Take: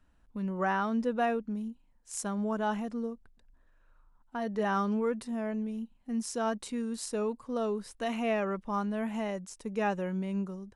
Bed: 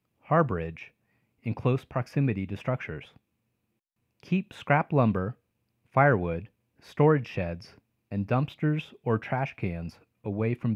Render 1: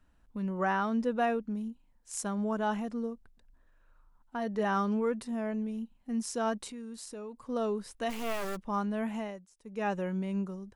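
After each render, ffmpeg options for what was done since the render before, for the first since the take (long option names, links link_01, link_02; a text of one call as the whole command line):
ffmpeg -i in.wav -filter_complex "[0:a]asettb=1/sr,asplit=3[link_01][link_02][link_03];[link_01]atrim=end=6.704[link_04];[link_02]atrim=start=6.7:end=7.46,asetpts=PTS-STARTPTS,afade=type=in:duration=0.004:curve=qsin,afade=type=out:start_time=0.756:duration=0.004:curve=qsin,acompressor=threshold=-44dB:ratio=2.5:attack=3.2:release=140:knee=1:detection=peak[link_05];[link_03]atrim=start=7.456[link_06];[link_04][link_05]acrossfade=duration=0.004:curve1=hsin:curve2=qsin[link_07];[link_07][link_06]acrossfade=duration=0.004:curve1=qsin:curve2=hsin,asplit=3[link_08][link_09][link_10];[link_08]afade=type=out:start_time=8.09:duration=0.02[link_11];[link_09]acrusher=bits=4:dc=4:mix=0:aa=0.000001,afade=type=in:start_time=8.09:duration=0.02,afade=type=out:start_time=8.55:duration=0.02[link_12];[link_10]afade=type=in:start_time=8.55:duration=0.02[link_13];[link_11][link_12][link_13]amix=inputs=3:normalize=0,asplit=3[link_14][link_15][link_16];[link_14]atrim=end=9.46,asetpts=PTS-STARTPTS,afade=type=out:start_time=9.1:duration=0.36:silence=0.133352[link_17];[link_15]atrim=start=9.46:end=9.59,asetpts=PTS-STARTPTS,volume=-17.5dB[link_18];[link_16]atrim=start=9.59,asetpts=PTS-STARTPTS,afade=type=in:duration=0.36:silence=0.133352[link_19];[link_17][link_18][link_19]concat=n=3:v=0:a=1" out.wav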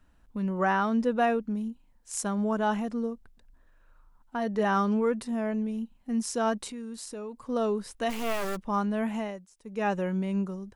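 ffmpeg -i in.wav -af "volume=4dB" out.wav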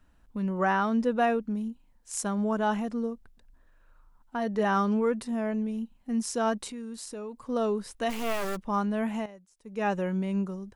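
ffmpeg -i in.wav -filter_complex "[0:a]asplit=2[link_01][link_02];[link_01]atrim=end=9.26,asetpts=PTS-STARTPTS,afade=type=out:start_time=9.256:duration=0.004:curve=hsin:silence=0.237137[link_03];[link_02]atrim=start=9.26,asetpts=PTS-STARTPTS,afade=type=in:duration=0.58:silence=0.237137[link_04];[link_03][link_04]concat=n=2:v=0:a=1" out.wav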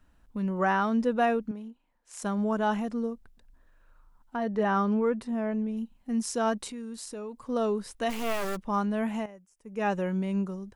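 ffmpeg -i in.wav -filter_complex "[0:a]asettb=1/sr,asplit=3[link_01][link_02][link_03];[link_01]atrim=end=1.514[link_04];[link_02]atrim=start=1.51:end=2.22,asetpts=PTS-STARTPTS,afade=type=in:duration=0.004:curve=qsin,afade=type=out:start_time=0.706:duration=0.004:curve=qsin,bass=frequency=250:gain=-14,treble=frequency=4000:gain=-11[link_05];[link_03]atrim=start=2.216[link_06];[link_04][link_05]acrossfade=duration=0.004:curve1=hsin:curve2=qsin[link_07];[link_07][link_06]acrossfade=duration=0.004:curve1=qsin:curve2=hsin,asettb=1/sr,asplit=3[link_08][link_09][link_10];[link_08]atrim=end=4.364[link_11];[link_09]atrim=start=4.36:end=5.77,asetpts=PTS-STARTPTS,afade=type=in:duration=0.004:curve=qsin,afade=type=out:start_time=1.406:duration=0.004:curve=qsin,highshelf=frequency=4100:gain=-10.5[link_12];[link_10]atrim=start=5.766[link_13];[link_11][link_12]acrossfade=duration=0.004:curve1=hsin:curve2=qsin[link_14];[link_14][link_13]acrossfade=duration=0.004:curve1=qsin:curve2=hsin,asettb=1/sr,asplit=3[link_15][link_16][link_17];[link_15]atrim=end=9.234[link_18];[link_16]atrim=start=9.23:end=9.8,asetpts=PTS-STARTPTS,afade=type=in:duration=0.004:curve=qsin,afade=type=out:start_time=0.566:duration=0.004:curve=qsin,equalizer=frequency=4000:width_type=o:width=0.43:gain=-12[link_19];[link_17]atrim=start=9.796[link_20];[link_18][link_19]acrossfade=duration=0.004:curve1=hsin:curve2=qsin[link_21];[link_21][link_20]acrossfade=duration=0.004:curve1=qsin:curve2=hsin" out.wav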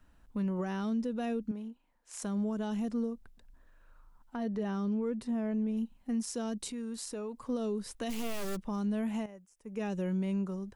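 ffmpeg -i in.wav -filter_complex "[0:a]acrossover=split=420|3000[link_01][link_02][link_03];[link_02]acompressor=threshold=-41dB:ratio=6[link_04];[link_01][link_04][link_03]amix=inputs=3:normalize=0,alimiter=level_in=2dB:limit=-24dB:level=0:latency=1:release=181,volume=-2dB" out.wav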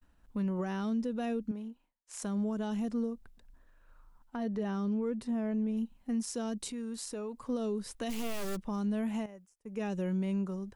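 ffmpeg -i in.wav -af "agate=range=-33dB:threshold=-57dB:ratio=3:detection=peak" out.wav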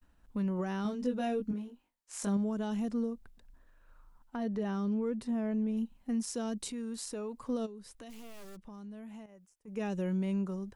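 ffmpeg -i in.wav -filter_complex "[0:a]asettb=1/sr,asplit=3[link_01][link_02][link_03];[link_01]atrim=end=0.834[link_04];[link_02]atrim=start=0.83:end=2.37,asetpts=PTS-STARTPTS,afade=type=in:duration=0.004:curve=qsin,afade=type=out:start_time=1.536:duration=0.004:curve=qsin,asplit=2[link_05][link_06];[link_06]adelay=20,volume=-2.5dB[link_07];[link_05][link_07]amix=inputs=2:normalize=0,atrim=end_sample=67914[link_08];[link_03]atrim=start=2.366[link_09];[link_04][link_08]acrossfade=duration=0.004:curve1=hsin:curve2=qsin[link_10];[link_10][link_09]acrossfade=duration=0.004:curve1=qsin:curve2=hsin,asplit=3[link_11][link_12][link_13];[link_11]afade=type=out:start_time=7.65:duration=0.02[link_14];[link_12]acompressor=threshold=-55dB:ratio=2:attack=3.2:release=140:knee=1:detection=peak,afade=type=in:start_time=7.65:duration=0.02,afade=type=out:start_time=9.67:duration=0.02[link_15];[link_13]afade=type=in:start_time=9.67:duration=0.02[link_16];[link_14][link_15][link_16]amix=inputs=3:normalize=0" out.wav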